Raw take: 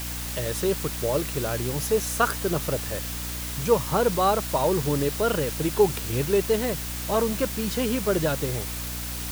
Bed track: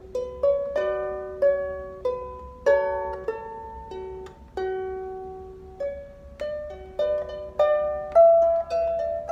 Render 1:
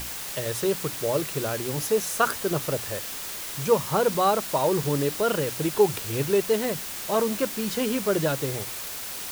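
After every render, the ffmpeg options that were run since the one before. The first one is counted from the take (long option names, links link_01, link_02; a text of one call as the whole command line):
ffmpeg -i in.wav -af "bandreject=frequency=60:width_type=h:width=6,bandreject=frequency=120:width_type=h:width=6,bandreject=frequency=180:width_type=h:width=6,bandreject=frequency=240:width_type=h:width=6,bandreject=frequency=300:width_type=h:width=6" out.wav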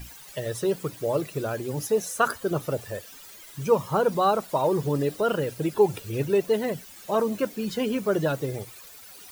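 ffmpeg -i in.wav -af "afftdn=noise_reduction=15:noise_floor=-35" out.wav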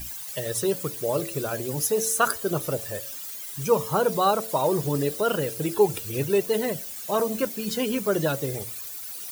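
ffmpeg -i in.wav -af "highshelf=frequency=4900:gain=11.5,bandreject=frequency=111.6:width_type=h:width=4,bandreject=frequency=223.2:width_type=h:width=4,bandreject=frequency=334.8:width_type=h:width=4,bandreject=frequency=446.4:width_type=h:width=4,bandreject=frequency=558:width_type=h:width=4,bandreject=frequency=669.6:width_type=h:width=4" out.wav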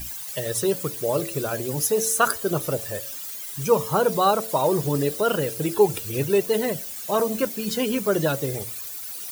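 ffmpeg -i in.wav -af "volume=2dB" out.wav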